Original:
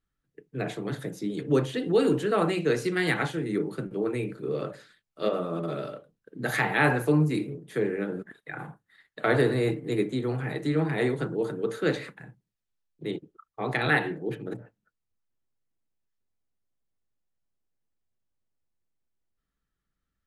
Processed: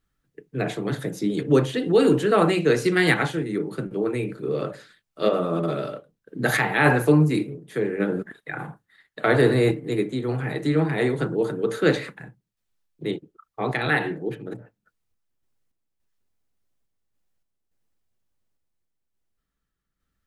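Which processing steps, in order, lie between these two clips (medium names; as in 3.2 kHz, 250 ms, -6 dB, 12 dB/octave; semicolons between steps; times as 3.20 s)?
random-step tremolo; trim +7.5 dB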